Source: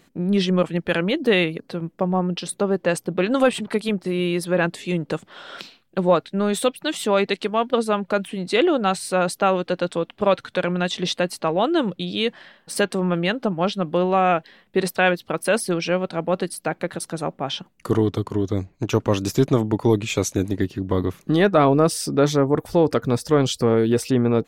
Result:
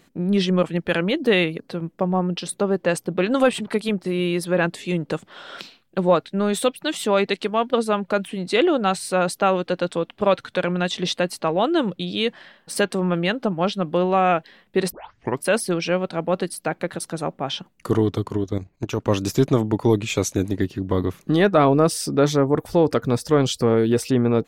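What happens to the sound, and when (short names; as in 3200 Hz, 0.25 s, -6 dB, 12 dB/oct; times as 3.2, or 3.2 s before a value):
14.92 tape start 0.53 s
18.37–19.08 level quantiser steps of 11 dB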